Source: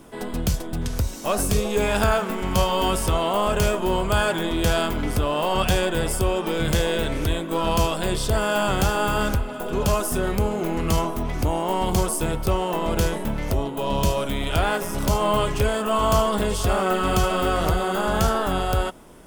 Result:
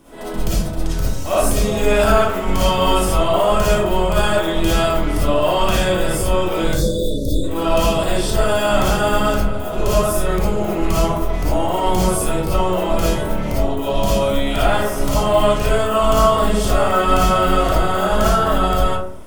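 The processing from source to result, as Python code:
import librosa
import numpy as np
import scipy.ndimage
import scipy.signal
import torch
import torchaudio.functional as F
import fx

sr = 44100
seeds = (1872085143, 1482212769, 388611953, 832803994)

y = fx.spec_erase(x, sr, start_s=6.68, length_s=0.76, low_hz=640.0, high_hz=3400.0)
y = fx.rev_freeverb(y, sr, rt60_s=0.63, hf_ratio=0.4, predelay_ms=15, drr_db=-9.0)
y = F.gain(torch.from_numpy(y), -4.5).numpy()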